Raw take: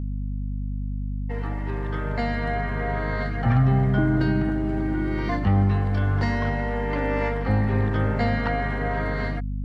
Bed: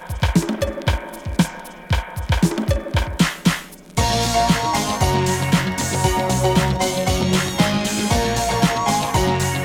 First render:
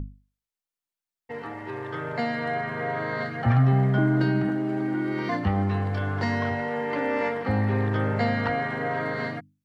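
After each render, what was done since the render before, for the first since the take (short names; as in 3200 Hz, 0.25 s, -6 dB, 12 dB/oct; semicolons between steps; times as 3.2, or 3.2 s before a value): notches 50/100/150/200/250/300 Hz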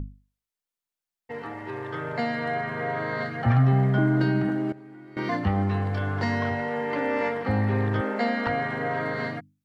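4.72–5.17 resonator 140 Hz, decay 1.5 s, mix 90%; 8.01–8.47 brick-wall FIR high-pass 190 Hz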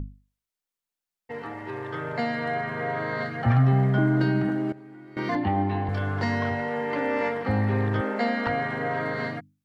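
5.35–5.89 speaker cabinet 100–4200 Hz, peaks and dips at 180 Hz -5 dB, 320 Hz +9 dB, 480 Hz -6 dB, 840 Hz +8 dB, 1300 Hz -9 dB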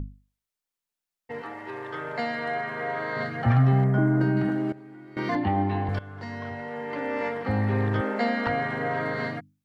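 1.41–3.16 HPF 340 Hz 6 dB/oct; 3.84–4.37 bell 3800 Hz -13.5 dB 1.2 oct; 5.99–7.84 fade in, from -15.5 dB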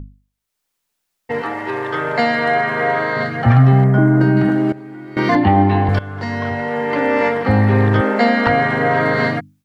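AGC gain up to 14 dB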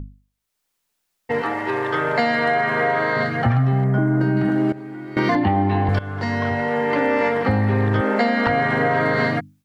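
compressor, threshold -15 dBFS, peak gain reduction 8.5 dB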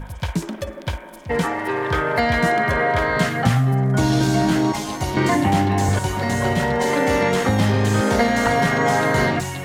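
add bed -7 dB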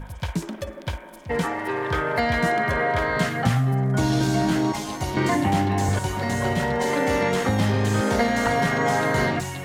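gain -3.5 dB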